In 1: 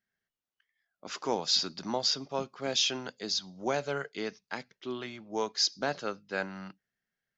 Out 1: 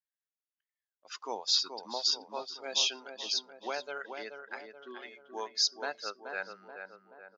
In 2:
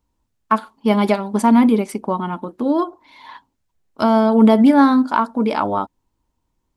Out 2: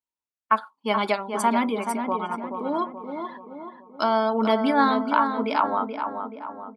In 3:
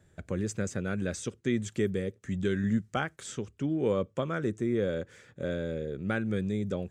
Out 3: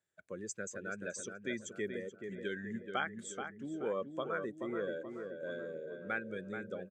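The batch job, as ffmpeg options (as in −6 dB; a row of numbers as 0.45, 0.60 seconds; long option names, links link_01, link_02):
-filter_complex "[0:a]highpass=frequency=1100:poles=1,afftdn=noise_reduction=17:noise_floor=-40,asplit=2[link_01][link_02];[link_02]adelay=429,lowpass=frequency=1800:poles=1,volume=-6dB,asplit=2[link_03][link_04];[link_04]adelay=429,lowpass=frequency=1800:poles=1,volume=0.53,asplit=2[link_05][link_06];[link_06]adelay=429,lowpass=frequency=1800:poles=1,volume=0.53,asplit=2[link_07][link_08];[link_08]adelay=429,lowpass=frequency=1800:poles=1,volume=0.53,asplit=2[link_09][link_10];[link_10]adelay=429,lowpass=frequency=1800:poles=1,volume=0.53,asplit=2[link_11][link_12];[link_12]adelay=429,lowpass=frequency=1800:poles=1,volume=0.53,asplit=2[link_13][link_14];[link_14]adelay=429,lowpass=frequency=1800:poles=1,volume=0.53[link_15];[link_01][link_03][link_05][link_07][link_09][link_11][link_13][link_15]amix=inputs=8:normalize=0"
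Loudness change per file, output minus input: −1.0, −8.0, −8.5 LU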